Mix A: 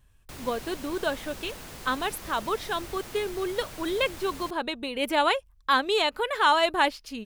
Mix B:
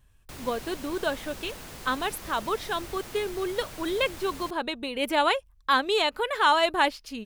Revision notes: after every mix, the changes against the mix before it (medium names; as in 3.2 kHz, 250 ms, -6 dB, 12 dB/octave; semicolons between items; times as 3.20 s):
no change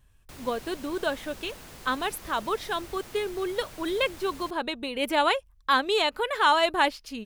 background -3.5 dB